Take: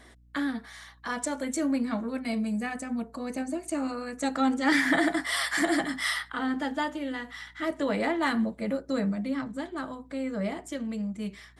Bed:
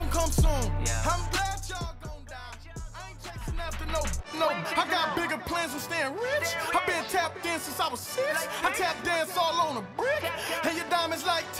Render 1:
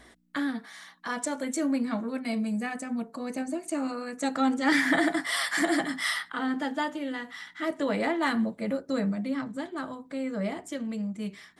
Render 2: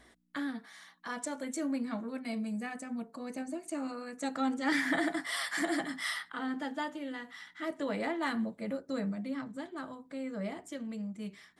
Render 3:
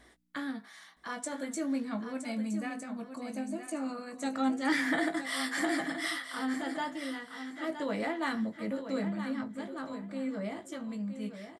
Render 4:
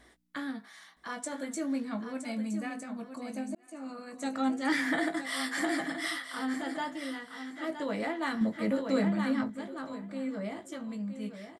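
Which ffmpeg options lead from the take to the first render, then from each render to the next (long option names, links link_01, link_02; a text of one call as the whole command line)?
ffmpeg -i in.wav -af "bandreject=frequency=60:width_type=h:width=4,bandreject=frequency=120:width_type=h:width=4" out.wav
ffmpeg -i in.wav -af "volume=-6.5dB" out.wav
ffmpeg -i in.wav -filter_complex "[0:a]asplit=2[link_01][link_02];[link_02]adelay=19,volume=-8.5dB[link_03];[link_01][link_03]amix=inputs=2:normalize=0,asplit=2[link_04][link_05];[link_05]aecho=0:1:967|1934|2901:0.335|0.0703|0.0148[link_06];[link_04][link_06]amix=inputs=2:normalize=0" out.wav
ffmpeg -i in.wav -filter_complex "[0:a]asettb=1/sr,asplit=3[link_01][link_02][link_03];[link_01]atrim=end=8.414[link_04];[link_02]atrim=start=8.41:end=9.5,asetpts=PTS-STARTPTS,afade=type=in:duration=0.004:curve=qsin,afade=type=out:start_time=1.086:duration=0.004:curve=qsin,acontrast=37[link_05];[link_03]atrim=start=9.496[link_06];[link_04][link_05]acrossfade=duration=0.004:curve1=hsin:curve2=qsin[link_07];[link_07][link_06]acrossfade=duration=0.004:curve1=qsin:curve2=hsin,asplit=2[link_08][link_09];[link_08]atrim=end=3.55,asetpts=PTS-STARTPTS,afade=type=out:start_time=3.546:duration=0.004:curve=hsin[link_10];[link_09]atrim=start=3.55,asetpts=PTS-STARTPTS,afade=type=in:duration=0.85:curve=qsin[link_11];[link_10][link_11]concat=n=2:v=0:a=1" out.wav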